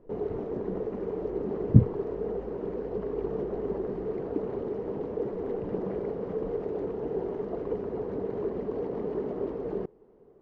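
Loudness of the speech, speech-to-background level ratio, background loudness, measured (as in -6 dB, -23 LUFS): -23.5 LUFS, 10.0 dB, -33.5 LUFS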